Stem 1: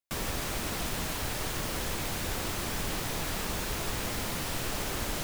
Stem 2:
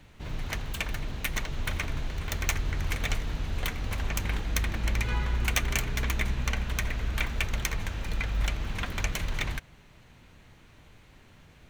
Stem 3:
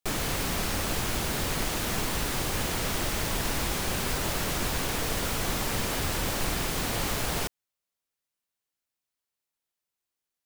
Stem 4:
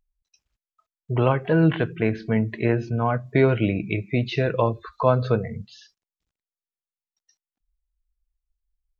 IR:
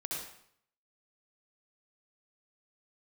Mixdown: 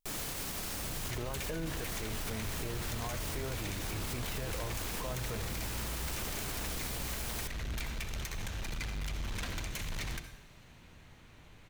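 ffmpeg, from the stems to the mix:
-filter_complex "[0:a]adelay=1550,volume=0.376[s0];[1:a]alimiter=limit=0.0944:level=0:latency=1:release=250,asoftclip=type=hard:threshold=0.0224,adynamicequalizer=threshold=0.00158:dfrequency=3500:dqfactor=0.7:tfrequency=3500:tqfactor=0.7:attack=5:release=100:ratio=0.375:range=3.5:mode=boostabove:tftype=highshelf,adelay=600,volume=0.631,asplit=2[s1][s2];[s2]volume=0.422[s3];[2:a]highshelf=f=4600:g=7.5,volume=0.376[s4];[3:a]asubboost=boost=11:cutoff=55,alimiter=limit=0.211:level=0:latency=1,volume=0.237,asplit=2[s5][s6];[s6]apad=whole_len=461001[s7];[s4][s7]sidechaincompress=threshold=0.00501:ratio=8:attack=16:release=136[s8];[s1][s8][s5]amix=inputs=3:normalize=0,alimiter=level_in=1.58:limit=0.0631:level=0:latency=1:release=98,volume=0.631,volume=1[s9];[4:a]atrim=start_sample=2205[s10];[s3][s10]afir=irnorm=-1:irlink=0[s11];[s0][s9][s11]amix=inputs=3:normalize=0,alimiter=level_in=1.68:limit=0.0631:level=0:latency=1:release=11,volume=0.596"

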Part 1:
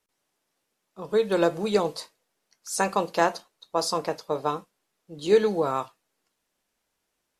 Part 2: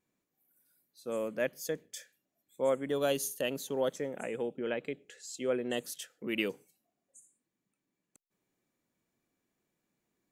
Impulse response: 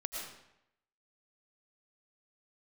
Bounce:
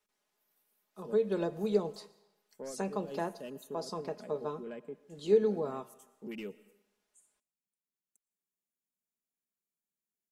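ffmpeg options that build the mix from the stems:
-filter_complex "[0:a]lowshelf=f=230:g=-5.5,volume=0.562,asplit=3[s0][s1][s2];[s1]volume=0.0891[s3];[1:a]afwtdn=0.00631,aexciter=amount=8:drive=5.3:freq=6400,asoftclip=type=tanh:threshold=0.075,volume=0.447,asplit=2[s4][s5];[s5]volume=0.112[s6];[s2]apad=whole_len=454770[s7];[s4][s7]sidechaincompress=threshold=0.0141:ratio=8:attack=6.4:release=125[s8];[2:a]atrim=start_sample=2205[s9];[s3][s6]amix=inputs=2:normalize=0[s10];[s10][s9]afir=irnorm=-1:irlink=0[s11];[s0][s8][s11]amix=inputs=3:normalize=0,highshelf=f=8400:g=-5.5,aecho=1:1:4.8:0.48,acrossover=split=490[s12][s13];[s13]acompressor=threshold=0.00251:ratio=2[s14];[s12][s14]amix=inputs=2:normalize=0"

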